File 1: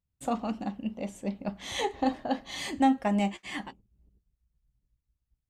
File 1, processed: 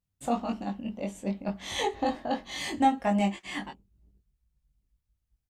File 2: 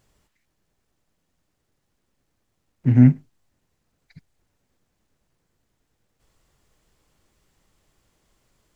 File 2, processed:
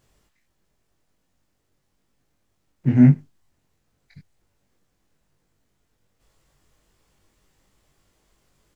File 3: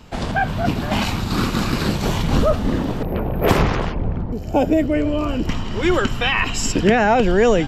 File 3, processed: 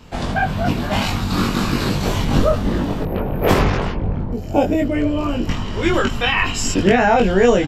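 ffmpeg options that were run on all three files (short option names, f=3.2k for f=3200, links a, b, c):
-filter_complex "[0:a]asplit=2[a][b];[b]adelay=21,volume=-2dB[c];[a][c]amix=inputs=2:normalize=0,volume=-1dB"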